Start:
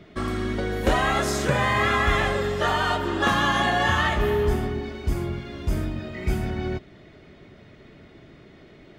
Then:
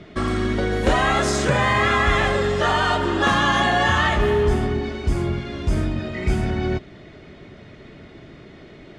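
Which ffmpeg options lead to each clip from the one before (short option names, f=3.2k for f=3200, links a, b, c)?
-filter_complex "[0:a]lowpass=f=9.6k:w=0.5412,lowpass=f=9.6k:w=1.3066,asplit=2[a][b];[b]alimiter=limit=-20dB:level=0:latency=1,volume=-0.5dB[c];[a][c]amix=inputs=2:normalize=0"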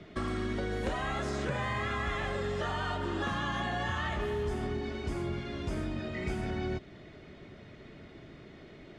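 -filter_complex "[0:a]acrossover=split=210|4000[a][b][c];[a]acompressor=threshold=-28dB:ratio=4[d];[b]acompressor=threshold=-26dB:ratio=4[e];[c]acompressor=threshold=-48dB:ratio=4[f];[d][e][f]amix=inputs=3:normalize=0,volume=-7.5dB"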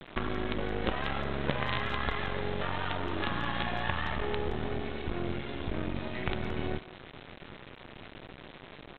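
-filter_complex "[0:a]aresample=8000,acrusher=bits=5:dc=4:mix=0:aa=0.000001,aresample=44100,asplit=2[a][b];[b]adelay=170,highpass=300,lowpass=3.4k,asoftclip=type=hard:threshold=-25.5dB,volume=-15dB[c];[a][c]amix=inputs=2:normalize=0,volume=4dB"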